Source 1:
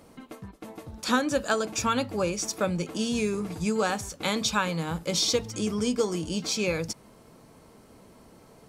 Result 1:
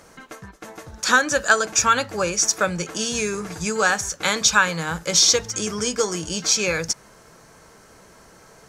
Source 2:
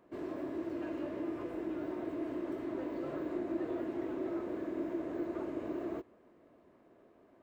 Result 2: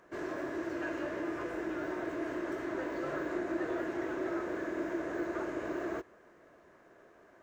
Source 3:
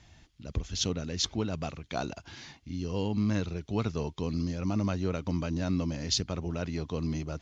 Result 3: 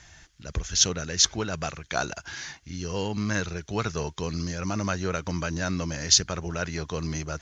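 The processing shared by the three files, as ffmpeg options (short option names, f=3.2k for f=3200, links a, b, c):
-af "equalizer=f=100:t=o:w=0.67:g=-4,equalizer=f=250:t=o:w=0.67:g=-8,equalizer=f=1.6k:t=o:w=0.67:g=10,equalizer=f=6.3k:t=o:w=0.67:g=10,volume=4dB"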